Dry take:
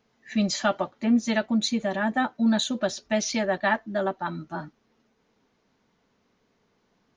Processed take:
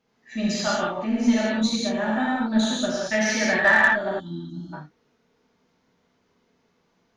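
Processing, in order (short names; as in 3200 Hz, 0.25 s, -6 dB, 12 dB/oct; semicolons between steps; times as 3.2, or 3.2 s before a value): 3.01–3.91 bell 1700 Hz +12 dB 0.85 oct; non-linear reverb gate 0.24 s flat, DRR -7 dB; added harmonics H 6 -31 dB, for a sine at 0 dBFS; 4.2–4.73 spectral gain 360–2900 Hz -29 dB; gain -6 dB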